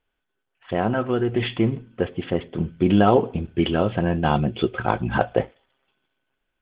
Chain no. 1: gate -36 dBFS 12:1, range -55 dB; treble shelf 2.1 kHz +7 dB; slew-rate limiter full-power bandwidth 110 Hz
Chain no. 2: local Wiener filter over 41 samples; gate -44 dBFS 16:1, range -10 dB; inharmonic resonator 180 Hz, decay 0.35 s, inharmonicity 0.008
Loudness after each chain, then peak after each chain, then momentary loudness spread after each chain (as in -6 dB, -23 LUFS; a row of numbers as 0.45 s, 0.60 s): -23.0 LUFS, -34.5 LUFS; -4.0 dBFS, -16.5 dBFS; 9 LU, 13 LU